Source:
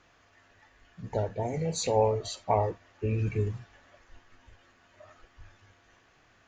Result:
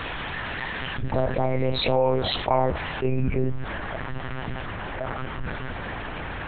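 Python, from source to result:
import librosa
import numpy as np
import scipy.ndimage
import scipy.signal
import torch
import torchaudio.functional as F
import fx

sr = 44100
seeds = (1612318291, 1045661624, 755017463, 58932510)

y = fx.high_shelf(x, sr, hz=2300.0, db=fx.steps((0.0, 6.0), (3.06, -8.0)))
y = fx.lpc_monotone(y, sr, seeds[0], pitch_hz=130.0, order=8)
y = fx.dynamic_eq(y, sr, hz=1200.0, q=0.94, threshold_db=-42.0, ratio=4.0, max_db=4)
y = fx.env_flatten(y, sr, amount_pct=70)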